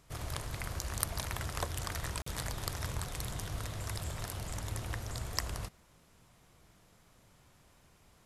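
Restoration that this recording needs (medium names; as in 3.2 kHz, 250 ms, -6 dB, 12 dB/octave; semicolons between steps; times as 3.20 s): clip repair -11 dBFS; interpolate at 2.22 s, 44 ms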